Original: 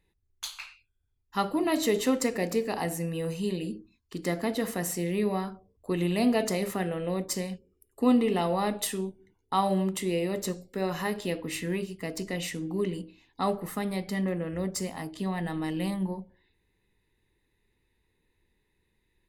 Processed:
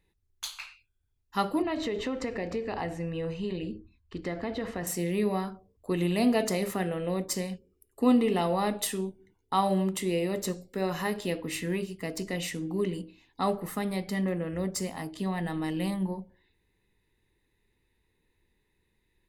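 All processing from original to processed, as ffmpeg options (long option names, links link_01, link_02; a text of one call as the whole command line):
ffmpeg -i in.wav -filter_complex "[0:a]asettb=1/sr,asplit=3[link_01][link_02][link_03];[link_01]atrim=end=1.624[link_04];[link_02]atrim=start=1.62:end=4.87,asetpts=PTS-STARTPTS,afade=type=in:duration=0.004:curve=qsin,afade=type=out:start_time=3.246:duration=0.004:curve=qsin,lowpass=3400,lowshelf=frequency=120:width_type=q:width=1.5:gain=9.5,acompressor=threshold=-27dB:ratio=5:attack=3.2:release=140:knee=1:detection=peak[link_05];[link_03]atrim=start=4.866[link_06];[link_04][link_05]acrossfade=duration=0.004:curve1=hsin:curve2=qsin[link_07];[link_07][link_06]acrossfade=duration=0.004:curve1=qsin:curve2=hsin" out.wav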